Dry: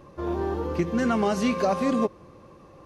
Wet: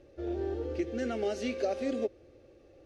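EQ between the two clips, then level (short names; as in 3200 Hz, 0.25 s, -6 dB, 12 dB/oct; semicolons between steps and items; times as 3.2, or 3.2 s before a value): air absorption 63 m; fixed phaser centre 430 Hz, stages 4; -4.5 dB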